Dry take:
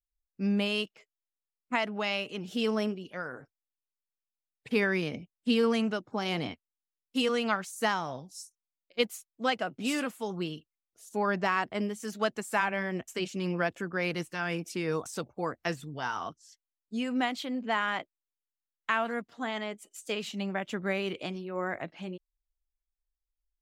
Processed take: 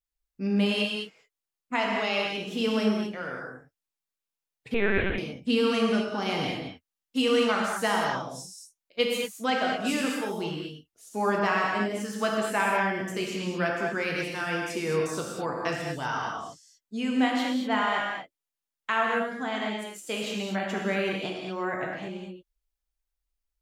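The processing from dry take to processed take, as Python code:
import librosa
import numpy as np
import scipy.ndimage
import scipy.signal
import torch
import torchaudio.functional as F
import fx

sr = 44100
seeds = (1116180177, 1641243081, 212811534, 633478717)

y = fx.rev_gated(x, sr, seeds[0], gate_ms=260, shape='flat', drr_db=-2.0)
y = fx.lpc_vocoder(y, sr, seeds[1], excitation='pitch_kept', order=10, at=(4.74, 5.18))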